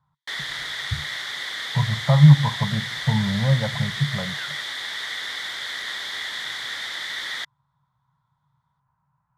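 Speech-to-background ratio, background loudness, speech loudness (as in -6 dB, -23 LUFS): 8.0 dB, -28.5 LUFS, -20.5 LUFS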